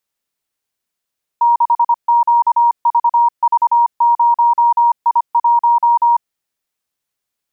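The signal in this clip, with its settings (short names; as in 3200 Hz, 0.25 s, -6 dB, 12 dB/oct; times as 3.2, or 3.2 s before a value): Morse "6QVV0I1" 25 wpm 945 Hz -8 dBFS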